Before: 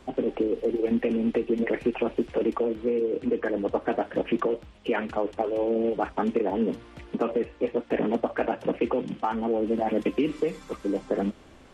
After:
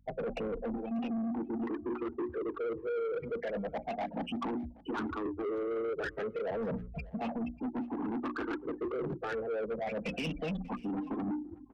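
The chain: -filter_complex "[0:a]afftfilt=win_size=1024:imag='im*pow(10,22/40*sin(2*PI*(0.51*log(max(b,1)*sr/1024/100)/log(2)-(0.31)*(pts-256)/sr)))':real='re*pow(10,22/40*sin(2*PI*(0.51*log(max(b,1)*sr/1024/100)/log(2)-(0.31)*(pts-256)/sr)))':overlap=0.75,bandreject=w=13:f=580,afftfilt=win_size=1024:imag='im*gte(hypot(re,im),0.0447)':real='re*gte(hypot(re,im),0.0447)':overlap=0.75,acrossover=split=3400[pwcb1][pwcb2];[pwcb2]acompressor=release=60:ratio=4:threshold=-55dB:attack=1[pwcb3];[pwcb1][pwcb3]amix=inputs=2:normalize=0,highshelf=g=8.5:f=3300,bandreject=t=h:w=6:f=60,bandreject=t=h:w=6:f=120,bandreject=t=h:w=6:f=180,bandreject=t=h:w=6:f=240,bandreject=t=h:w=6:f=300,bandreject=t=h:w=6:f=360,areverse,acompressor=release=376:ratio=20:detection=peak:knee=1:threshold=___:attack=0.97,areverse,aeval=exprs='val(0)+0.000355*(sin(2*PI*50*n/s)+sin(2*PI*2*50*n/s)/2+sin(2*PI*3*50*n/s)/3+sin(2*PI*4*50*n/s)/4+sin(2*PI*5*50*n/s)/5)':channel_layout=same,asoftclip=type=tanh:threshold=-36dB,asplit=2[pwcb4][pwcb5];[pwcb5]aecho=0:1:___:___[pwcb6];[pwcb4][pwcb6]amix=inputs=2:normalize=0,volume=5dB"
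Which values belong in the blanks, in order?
-29dB, 591, 0.0794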